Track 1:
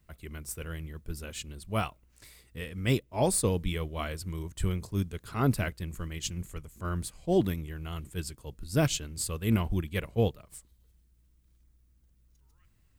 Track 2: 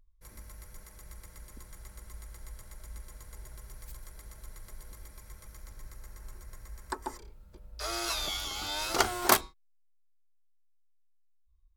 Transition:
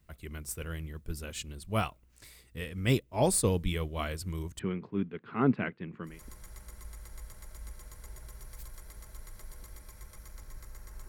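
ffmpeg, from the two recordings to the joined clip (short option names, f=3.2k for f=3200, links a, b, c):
-filter_complex "[0:a]asettb=1/sr,asplit=3[a][b][c];[a]atrim=end=4.594[d];[b]atrim=start=4.59:end=6.22,asetpts=PTS-STARTPTS,afade=t=in:d=0.004:c=qsin,afade=t=out:st=1.626:d=0.004:c=qsin,highpass=f=150:w=0.5412,highpass=f=150:w=1.3066,equalizer=f=240:t=q:w=4:g=5,equalizer=f=410:t=q:w=4:g=3,equalizer=f=610:t=q:w=4:g=-5,lowpass=f=2.6k:w=0.5412,lowpass=f=2.6k:w=1.3066[e];[c]atrim=start=6.216[f];[d][e]acrossfade=d=0.004:c1=hsin:c2=qsin[g];[g][f]acrossfade=d=0.004:c1=qsin:c2=hsin,apad=whole_dur=11.08,atrim=end=11.08,atrim=end=6.22,asetpts=PTS-STARTPTS[h];[1:a]atrim=start=1.31:end=6.37,asetpts=PTS-STARTPTS[i];[h][i]acrossfade=d=0.2:c1=tri:c2=tri"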